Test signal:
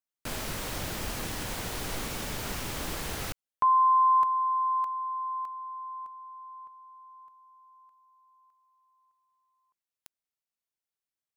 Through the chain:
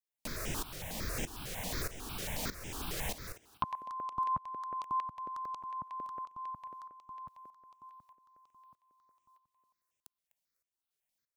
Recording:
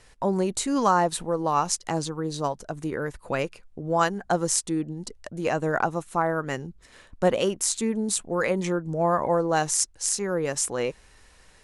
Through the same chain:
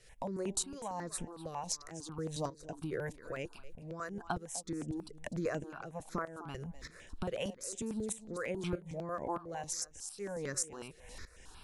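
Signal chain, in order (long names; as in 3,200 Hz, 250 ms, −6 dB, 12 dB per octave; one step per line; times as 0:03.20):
downward compressor 6 to 1, threshold −39 dBFS
shaped tremolo saw up 1.6 Hz, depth 85%
on a send: feedback echo with a high-pass in the loop 251 ms, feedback 18%, high-pass 180 Hz, level −16 dB
on the sum: step-sequenced phaser 11 Hz 250–4,300 Hz
level +9 dB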